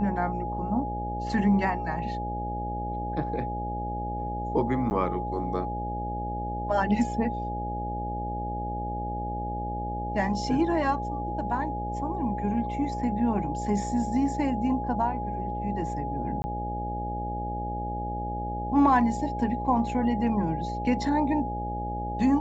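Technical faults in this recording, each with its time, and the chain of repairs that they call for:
mains buzz 60 Hz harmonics 12 −34 dBFS
whistle 830 Hz −32 dBFS
0:04.90–0:04.91: drop-out 9.9 ms
0:16.42–0:16.44: drop-out 20 ms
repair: hum removal 60 Hz, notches 12
notch filter 830 Hz, Q 30
repair the gap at 0:04.90, 9.9 ms
repair the gap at 0:16.42, 20 ms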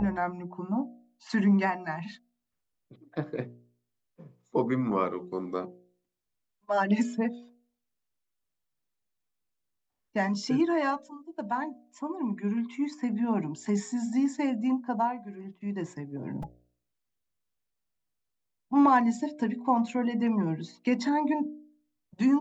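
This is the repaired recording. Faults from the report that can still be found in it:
none of them is left

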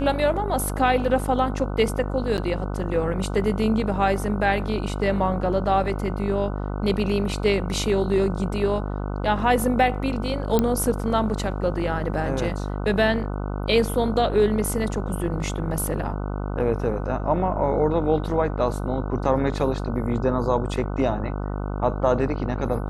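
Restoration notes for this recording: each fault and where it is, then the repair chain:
mains buzz 50 Hz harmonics 30 −28 dBFS
0:02.37–0:02.38: drop-out 9.5 ms
0:10.59: click −7 dBFS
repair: click removal
hum removal 50 Hz, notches 30
repair the gap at 0:02.37, 9.5 ms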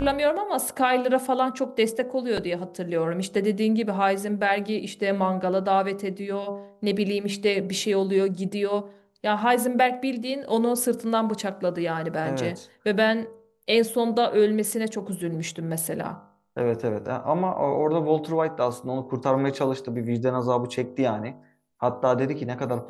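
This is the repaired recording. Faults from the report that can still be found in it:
none of them is left

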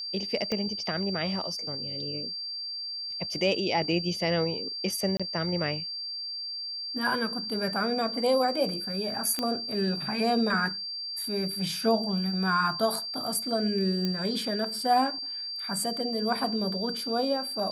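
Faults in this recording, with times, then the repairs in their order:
whistle 4,700 Hz −33 dBFS
0:00.52: click −18 dBFS
0:05.17–0:05.20: drop-out 26 ms
0:09.39: click −14 dBFS
0:14.05: click −16 dBFS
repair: click removal
notch filter 4,700 Hz, Q 30
repair the gap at 0:05.17, 26 ms

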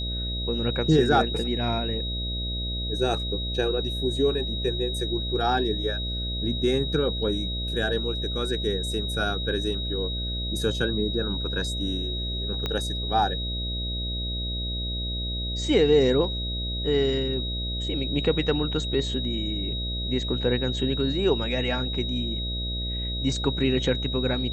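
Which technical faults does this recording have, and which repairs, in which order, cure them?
mains buzz 60 Hz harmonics 11 −31 dBFS
whistle 3,800 Hz −31 dBFS
0:12.66: click −14 dBFS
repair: click removal
hum removal 60 Hz, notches 11
notch filter 3,800 Hz, Q 30

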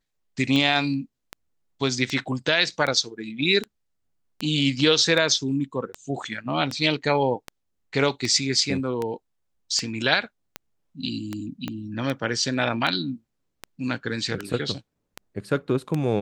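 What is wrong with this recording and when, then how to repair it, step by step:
scratch tick 78 rpm −14 dBFS
0:11.68: click −16 dBFS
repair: click removal

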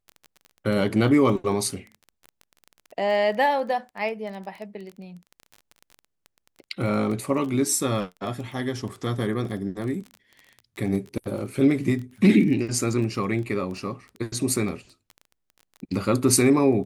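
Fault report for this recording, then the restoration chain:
surface crackle 22 per second −32 dBFS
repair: click removal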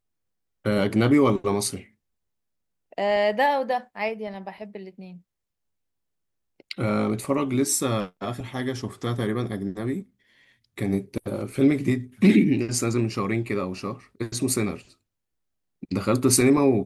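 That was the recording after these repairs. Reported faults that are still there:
none of them is left

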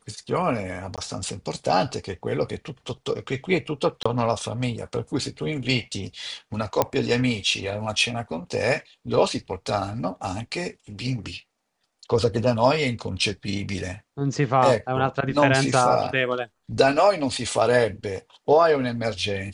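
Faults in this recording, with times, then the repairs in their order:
0:00.96–0:00.98: drop-out 17 ms
0:04.03–0:04.05: drop-out 25 ms
0:06.82: click −5 dBFS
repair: click removal
repair the gap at 0:00.96, 17 ms
repair the gap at 0:04.03, 25 ms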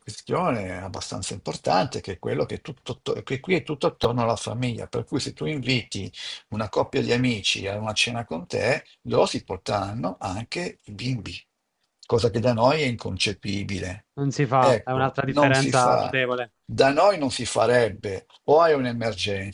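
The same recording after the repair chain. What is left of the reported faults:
none of them is left

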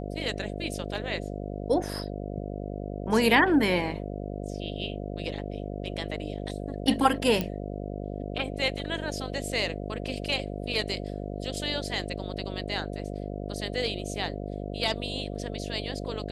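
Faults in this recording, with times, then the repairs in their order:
mains buzz 50 Hz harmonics 14 −35 dBFS
0:07.41: click −14 dBFS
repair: click removal
hum removal 50 Hz, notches 14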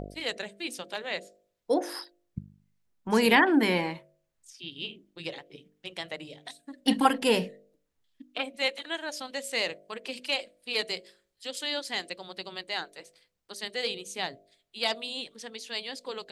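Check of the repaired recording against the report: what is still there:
none of them is left

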